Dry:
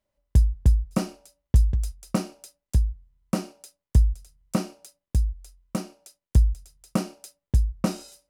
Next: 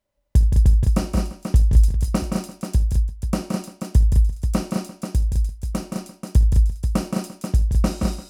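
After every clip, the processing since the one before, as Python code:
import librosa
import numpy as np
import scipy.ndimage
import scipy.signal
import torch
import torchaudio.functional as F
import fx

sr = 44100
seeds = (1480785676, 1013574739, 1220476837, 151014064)

y = fx.echo_multitap(x, sr, ms=(56, 75, 172, 209, 344, 485), db=(-17.5, -18.0, -5.0, -4.5, -18.0, -7.5))
y = y * librosa.db_to_amplitude(2.0)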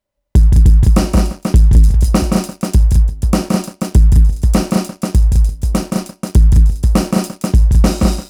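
y = fx.leveller(x, sr, passes=2)
y = y * librosa.db_to_amplitude(3.5)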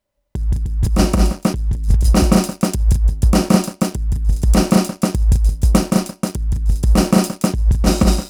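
y = fx.over_compress(x, sr, threshold_db=-11.0, ratio=-0.5)
y = y * librosa.db_to_amplitude(-1.0)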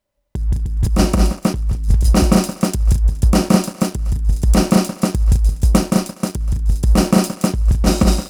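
y = fx.echo_thinned(x, sr, ms=244, feedback_pct=26, hz=740.0, wet_db=-18)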